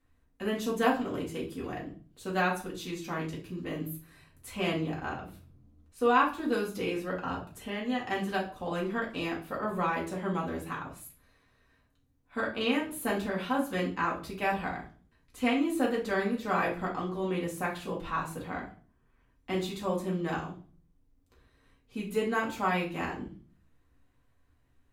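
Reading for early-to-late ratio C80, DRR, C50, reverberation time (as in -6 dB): 15.0 dB, -4.5 dB, 9.0 dB, 0.40 s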